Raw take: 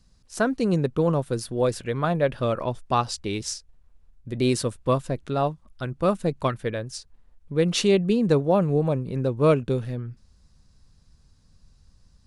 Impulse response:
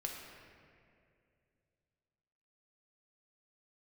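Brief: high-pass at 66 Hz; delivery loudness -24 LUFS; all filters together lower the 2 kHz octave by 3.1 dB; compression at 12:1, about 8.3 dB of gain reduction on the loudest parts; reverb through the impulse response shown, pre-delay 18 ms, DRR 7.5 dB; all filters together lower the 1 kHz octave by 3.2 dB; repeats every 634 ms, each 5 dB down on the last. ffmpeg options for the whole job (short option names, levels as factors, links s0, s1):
-filter_complex "[0:a]highpass=66,equalizer=f=1000:t=o:g=-3.5,equalizer=f=2000:t=o:g=-3,acompressor=threshold=0.0708:ratio=12,aecho=1:1:634|1268|1902|2536|3170|3804|4438:0.562|0.315|0.176|0.0988|0.0553|0.031|0.0173,asplit=2[s0][s1];[1:a]atrim=start_sample=2205,adelay=18[s2];[s1][s2]afir=irnorm=-1:irlink=0,volume=0.422[s3];[s0][s3]amix=inputs=2:normalize=0,volume=1.68"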